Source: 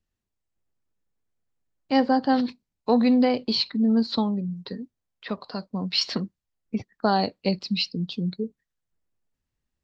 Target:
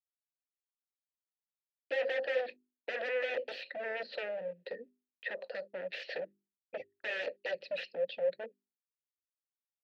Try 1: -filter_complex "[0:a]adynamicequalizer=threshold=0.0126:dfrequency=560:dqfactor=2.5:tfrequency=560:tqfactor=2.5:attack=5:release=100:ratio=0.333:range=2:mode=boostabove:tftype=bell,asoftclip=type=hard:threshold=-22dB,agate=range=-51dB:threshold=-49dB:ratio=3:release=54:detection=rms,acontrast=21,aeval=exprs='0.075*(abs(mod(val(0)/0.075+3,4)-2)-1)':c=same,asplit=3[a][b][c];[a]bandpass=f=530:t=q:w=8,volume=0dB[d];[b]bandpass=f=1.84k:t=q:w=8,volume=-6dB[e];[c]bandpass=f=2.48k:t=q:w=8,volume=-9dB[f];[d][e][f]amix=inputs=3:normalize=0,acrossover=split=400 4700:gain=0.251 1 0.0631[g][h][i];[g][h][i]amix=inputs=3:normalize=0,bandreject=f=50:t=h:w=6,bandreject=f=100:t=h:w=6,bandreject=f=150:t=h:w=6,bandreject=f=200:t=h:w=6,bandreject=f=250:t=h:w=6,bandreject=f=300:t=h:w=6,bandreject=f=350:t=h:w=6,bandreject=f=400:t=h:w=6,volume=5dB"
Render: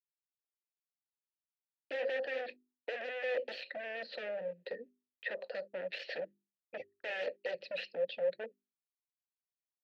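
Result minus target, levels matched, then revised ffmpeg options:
hard clip: distortion +15 dB
-filter_complex "[0:a]adynamicequalizer=threshold=0.0126:dfrequency=560:dqfactor=2.5:tfrequency=560:tqfactor=2.5:attack=5:release=100:ratio=0.333:range=2:mode=boostabove:tftype=bell,asoftclip=type=hard:threshold=-12dB,agate=range=-51dB:threshold=-49dB:ratio=3:release=54:detection=rms,acontrast=21,aeval=exprs='0.075*(abs(mod(val(0)/0.075+3,4)-2)-1)':c=same,asplit=3[a][b][c];[a]bandpass=f=530:t=q:w=8,volume=0dB[d];[b]bandpass=f=1.84k:t=q:w=8,volume=-6dB[e];[c]bandpass=f=2.48k:t=q:w=8,volume=-9dB[f];[d][e][f]amix=inputs=3:normalize=0,acrossover=split=400 4700:gain=0.251 1 0.0631[g][h][i];[g][h][i]amix=inputs=3:normalize=0,bandreject=f=50:t=h:w=6,bandreject=f=100:t=h:w=6,bandreject=f=150:t=h:w=6,bandreject=f=200:t=h:w=6,bandreject=f=250:t=h:w=6,bandreject=f=300:t=h:w=6,bandreject=f=350:t=h:w=6,bandreject=f=400:t=h:w=6,volume=5dB"

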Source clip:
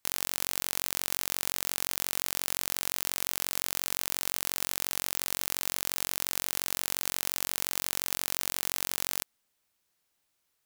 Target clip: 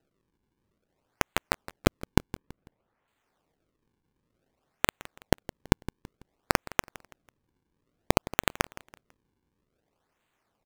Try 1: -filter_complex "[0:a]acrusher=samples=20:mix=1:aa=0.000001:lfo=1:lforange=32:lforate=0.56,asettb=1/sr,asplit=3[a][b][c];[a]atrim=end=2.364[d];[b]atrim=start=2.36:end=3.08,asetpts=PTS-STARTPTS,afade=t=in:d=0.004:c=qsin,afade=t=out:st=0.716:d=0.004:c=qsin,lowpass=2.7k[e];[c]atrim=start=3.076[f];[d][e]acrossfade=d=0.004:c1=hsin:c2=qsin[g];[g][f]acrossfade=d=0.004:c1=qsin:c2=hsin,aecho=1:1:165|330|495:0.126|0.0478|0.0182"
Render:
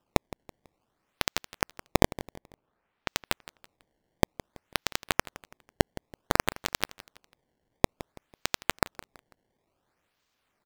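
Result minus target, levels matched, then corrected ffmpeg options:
decimation with a swept rate: distortion -5 dB
-filter_complex "[0:a]acrusher=samples=39:mix=1:aa=0.000001:lfo=1:lforange=62.4:lforate=0.56,asettb=1/sr,asplit=3[a][b][c];[a]atrim=end=2.364[d];[b]atrim=start=2.36:end=3.08,asetpts=PTS-STARTPTS,afade=t=in:d=0.004:c=qsin,afade=t=out:st=0.716:d=0.004:c=qsin,lowpass=2.7k[e];[c]atrim=start=3.076[f];[d][e]acrossfade=d=0.004:c1=hsin:c2=qsin[g];[g][f]acrossfade=d=0.004:c1=qsin:c2=hsin,aecho=1:1:165|330|495:0.126|0.0478|0.0182"

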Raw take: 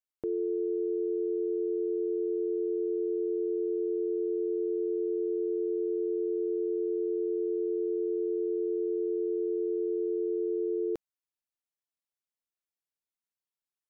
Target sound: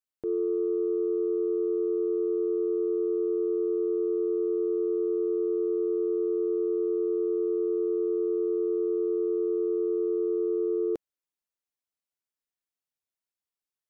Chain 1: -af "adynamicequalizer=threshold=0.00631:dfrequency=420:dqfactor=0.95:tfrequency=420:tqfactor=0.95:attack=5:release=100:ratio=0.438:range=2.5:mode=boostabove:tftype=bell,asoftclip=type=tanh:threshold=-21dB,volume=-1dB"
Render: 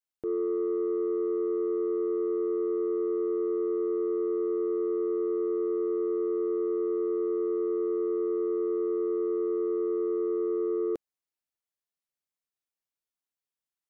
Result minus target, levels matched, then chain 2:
soft clip: distortion +11 dB
-af "adynamicequalizer=threshold=0.00631:dfrequency=420:dqfactor=0.95:tfrequency=420:tqfactor=0.95:attack=5:release=100:ratio=0.438:range=2.5:mode=boostabove:tftype=bell,asoftclip=type=tanh:threshold=-14.5dB,volume=-1dB"

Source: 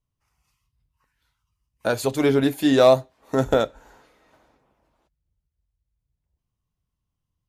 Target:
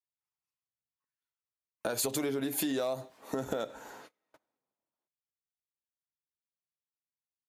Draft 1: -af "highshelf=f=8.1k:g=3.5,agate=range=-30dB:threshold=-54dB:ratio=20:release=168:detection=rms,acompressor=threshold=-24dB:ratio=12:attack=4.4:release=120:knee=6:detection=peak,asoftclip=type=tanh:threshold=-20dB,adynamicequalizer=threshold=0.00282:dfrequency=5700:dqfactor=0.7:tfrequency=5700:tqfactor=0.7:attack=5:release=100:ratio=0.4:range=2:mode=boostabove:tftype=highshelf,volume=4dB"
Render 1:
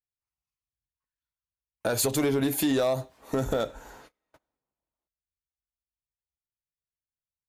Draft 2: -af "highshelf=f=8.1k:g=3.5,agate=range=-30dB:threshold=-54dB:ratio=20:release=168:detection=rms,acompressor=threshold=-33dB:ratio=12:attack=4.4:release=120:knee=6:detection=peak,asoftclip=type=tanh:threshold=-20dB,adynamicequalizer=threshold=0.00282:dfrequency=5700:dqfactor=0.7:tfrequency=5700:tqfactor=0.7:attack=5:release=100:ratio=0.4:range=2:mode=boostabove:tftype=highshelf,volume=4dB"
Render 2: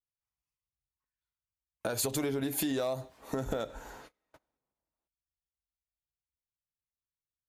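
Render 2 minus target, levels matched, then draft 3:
125 Hz band +5.0 dB
-af "highpass=170,highshelf=f=8.1k:g=3.5,agate=range=-30dB:threshold=-54dB:ratio=20:release=168:detection=rms,acompressor=threshold=-33dB:ratio=12:attack=4.4:release=120:knee=6:detection=peak,asoftclip=type=tanh:threshold=-20dB,adynamicequalizer=threshold=0.00282:dfrequency=5700:dqfactor=0.7:tfrequency=5700:tqfactor=0.7:attack=5:release=100:ratio=0.4:range=2:mode=boostabove:tftype=highshelf,volume=4dB"

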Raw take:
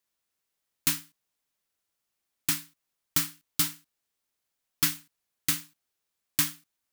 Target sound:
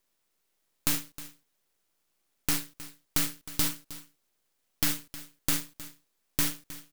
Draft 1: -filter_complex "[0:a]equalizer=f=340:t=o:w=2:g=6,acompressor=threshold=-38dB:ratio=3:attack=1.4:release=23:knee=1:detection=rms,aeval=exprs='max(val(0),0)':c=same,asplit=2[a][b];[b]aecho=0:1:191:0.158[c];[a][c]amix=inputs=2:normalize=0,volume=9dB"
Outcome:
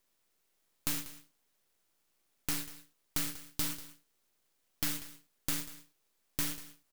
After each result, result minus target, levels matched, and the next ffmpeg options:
echo 0.122 s early; compressor: peak gain reduction +6.5 dB
-filter_complex "[0:a]equalizer=f=340:t=o:w=2:g=6,acompressor=threshold=-38dB:ratio=3:attack=1.4:release=23:knee=1:detection=rms,aeval=exprs='max(val(0),0)':c=same,asplit=2[a][b];[b]aecho=0:1:313:0.158[c];[a][c]amix=inputs=2:normalize=0,volume=9dB"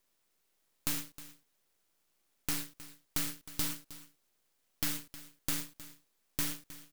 compressor: peak gain reduction +6.5 dB
-filter_complex "[0:a]equalizer=f=340:t=o:w=2:g=6,acompressor=threshold=-28dB:ratio=3:attack=1.4:release=23:knee=1:detection=rms,aeval=exprs='max(val(0),0)':c=same,asplit=2[a][b];[b]aecho=0:1:313:0.158[c];[a][c]amix=inputs=2:normalize=0,volume=9dB"

